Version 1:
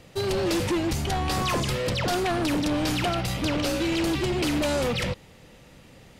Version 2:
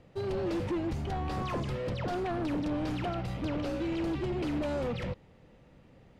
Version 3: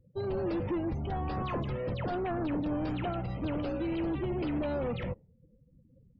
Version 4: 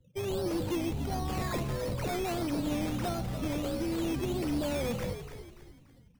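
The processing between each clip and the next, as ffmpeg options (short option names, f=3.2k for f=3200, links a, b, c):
-af "lowpass=f=1.1k:p=1,volume=-6dB"
-af "afftdn=nr=35:nf=-47"
-filter_complex "[0:a]acrossover=split=160[a][b];[b]acrusher=samples=12:mix=1:aa=0.000001:lfo=1:lforange=7.2:lforate=1.5[c];[a][c]amix=inputs=2:normalize=0,asplit=5[d][e][f][g][h];[e]adelay=289,afreqshift=-74,volume=-9.5dB[i];[f]adelay=578,afreqshift=-148,volume=-17.7dB[j];[g]adelay=867,afreqshift=-222,volume=-25.9dB[k];[h]adelay=1156,afreqshift=-296,volume=-34dB[l];[d][i][j][k][l]amix=inputs=5:normalize=0"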